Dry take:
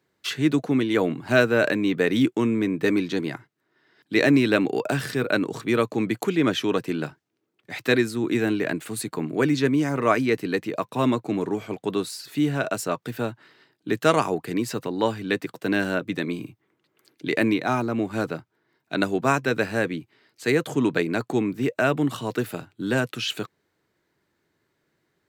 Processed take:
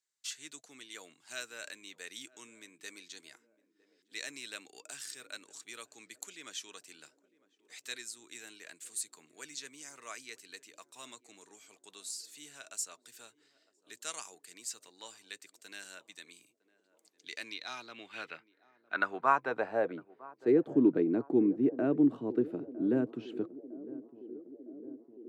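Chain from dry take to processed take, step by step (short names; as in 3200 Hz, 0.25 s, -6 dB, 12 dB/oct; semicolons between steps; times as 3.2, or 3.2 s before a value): band-pass sweep 7400 Hz -> 310 Hz, 17.09–20.67; narrowing echo 0.957 s, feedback 76%, band-pass 360 Hz, level -17.5 dB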